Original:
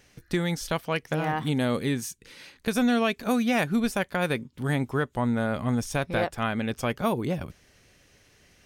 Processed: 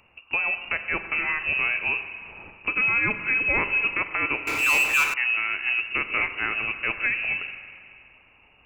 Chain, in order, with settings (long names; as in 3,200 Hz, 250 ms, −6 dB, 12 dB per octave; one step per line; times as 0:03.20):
voice inversion scrambler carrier 2,800 Hz
low-shelf EQ 210 Hz +6 dB
spring reverb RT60 2.3 s, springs 39/44 ms, chirp 80 ms, DRR 8.5 dB
0:04.47–0:05.14: power curve on the samples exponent 0.5